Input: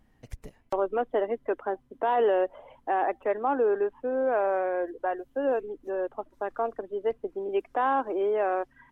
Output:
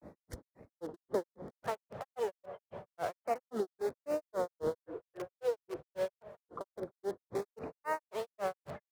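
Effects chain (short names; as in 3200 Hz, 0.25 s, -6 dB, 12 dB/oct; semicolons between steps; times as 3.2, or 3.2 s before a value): one diode to ground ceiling -26 dBFS; wind noise 420 Hz -45 dBFS; in parallel at -8 dB: wrapped overs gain 32 dB; on the sum: bell 550 Hz +6.5 dB 0.22 oct; compressor 2.5:1, threshold -33 dBFS, peak gain reduction 9.5 dB; HPF 99 Hz 12 dB/oct; dark delay 0.162 s, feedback 79%, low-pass 2100 Hz, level -17 dB; LFO notch square 0.31 Hz 280–2900 Hz; grains 0.16 s, grains 3.7/s, spray 14 ms, pitch spread up and down by 3 st; record warp 45 rpm, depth 100 cents; gain +2 dB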